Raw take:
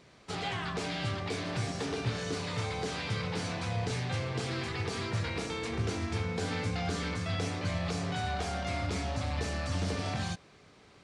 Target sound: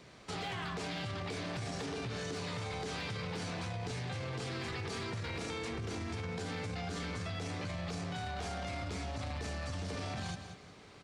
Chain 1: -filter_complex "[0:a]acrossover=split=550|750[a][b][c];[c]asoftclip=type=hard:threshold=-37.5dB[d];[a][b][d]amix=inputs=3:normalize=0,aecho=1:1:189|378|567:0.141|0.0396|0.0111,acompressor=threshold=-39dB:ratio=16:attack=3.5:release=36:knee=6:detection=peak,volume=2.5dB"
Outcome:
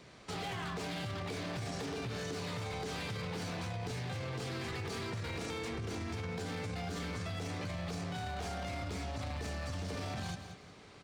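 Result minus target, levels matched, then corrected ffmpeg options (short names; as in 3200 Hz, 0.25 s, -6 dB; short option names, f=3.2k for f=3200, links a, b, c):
hard clip: distortion +17 dB
-filter_complex "[0:a]acrossover=split=550|750[a][b][c];[c]asoftclip=type=hard:threshold=-31.5dB[d];[a][b][d]amix=inputs=3:normalize=0,aecho=1:1:189|378|567:0.141|0.0396|0.0111,acompressor=threshold=-39dB:ratio=16:attack=3.5:release=36:knee=6:detection=peak,volume=2.5dB"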